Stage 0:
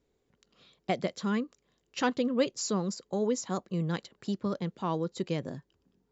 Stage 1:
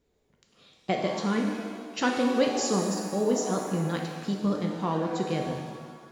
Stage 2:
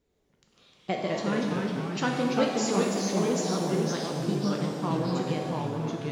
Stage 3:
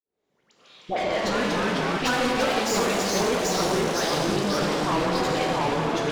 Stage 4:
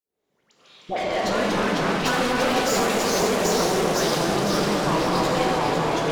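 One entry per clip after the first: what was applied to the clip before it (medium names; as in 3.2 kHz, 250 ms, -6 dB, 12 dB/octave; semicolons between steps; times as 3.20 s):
pitch-shifted reverb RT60 1.6 s, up +7 st, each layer -8 dB, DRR 1 dB; trim +1.5 dB
ever faster or slower copies 97 ms, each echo -2 st, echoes 3; trim -2.5 dB
fade-in on the opening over 1.98 s; overdrive pedal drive 31 dB, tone 4.5 kHz, clips at -12 dBFS; phase dispersion highs, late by 86 ms, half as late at 1.2 kHz; trim -4.5 dB
peaking EQ 14 kHz +4.5 dB 1.1 oct; echo whose repeats swap between lows and highs 251 ms, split 1.6 kHz, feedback 57%, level -2 dB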